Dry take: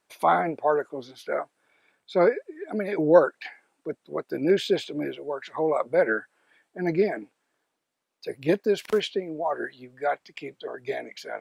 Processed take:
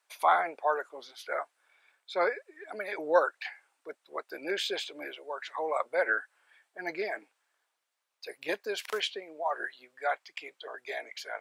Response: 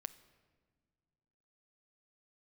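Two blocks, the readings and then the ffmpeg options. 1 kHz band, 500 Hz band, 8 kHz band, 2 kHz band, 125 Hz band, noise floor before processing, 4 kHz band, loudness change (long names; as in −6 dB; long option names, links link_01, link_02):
−2.5 dB, −9.0 dB, can't be measured, −0.5 dB, below −25 dB, −79 dBFS, 0.0 dB, −6.5 dB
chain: -af "highpass=820"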